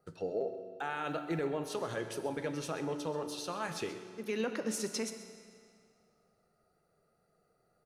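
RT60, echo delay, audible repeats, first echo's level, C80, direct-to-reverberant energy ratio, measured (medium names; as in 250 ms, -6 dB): 2.2 s, 131 ms, 1, -15.5 dB, 9.0 dB, 7.5 dB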